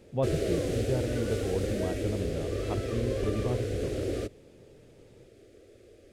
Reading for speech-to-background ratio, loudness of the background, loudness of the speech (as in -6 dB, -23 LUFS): -2.5 dB, -32.5 LUFS, -35.0 LUFS